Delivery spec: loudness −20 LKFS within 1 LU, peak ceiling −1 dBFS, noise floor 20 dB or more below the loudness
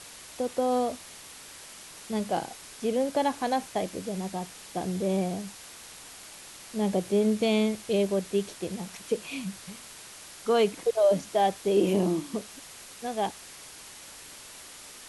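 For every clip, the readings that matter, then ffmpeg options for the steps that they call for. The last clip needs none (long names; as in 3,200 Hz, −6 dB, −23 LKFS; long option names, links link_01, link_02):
background noise floor −47 dBFS; target noise floor −49 dBFS; integrated loudness −28.5 LKFS; sample peak −12.5 dBFS; target loudness −20.0 LKFS
→ -af "afftdn=noise_reduction=6:noise_floor=-47"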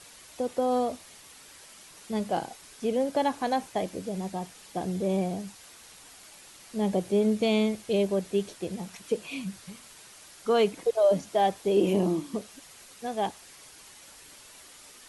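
background noise floor −51 dBFS; integrated loudness −28.5 LKFS; sample peak −13.0 dBFS; target loudness −20.0 LKFS
→ -af "volume=8.5dB"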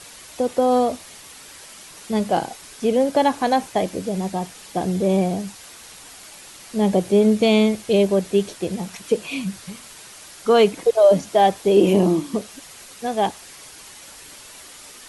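integrated loudness −20.0 LKFS; sample peak −4.5 dBFS; background noise floor −43 dBFS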